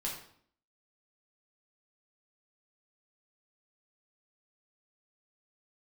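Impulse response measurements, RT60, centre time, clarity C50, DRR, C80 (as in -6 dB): 0.60 s, 34 ms, 4.5 dB, -4.0 dB, 8.0 dB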